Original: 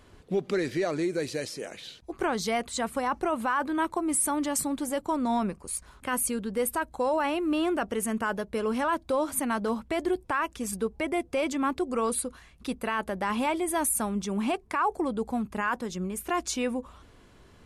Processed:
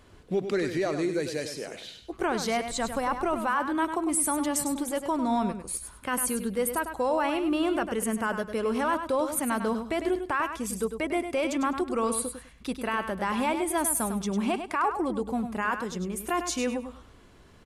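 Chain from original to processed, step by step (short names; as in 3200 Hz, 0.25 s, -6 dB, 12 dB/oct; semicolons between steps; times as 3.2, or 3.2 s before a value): 2.67–3.38 added noise brown -44 dBFS; on a send: feedback echo 0.101 s, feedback 20%, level -8.5 dB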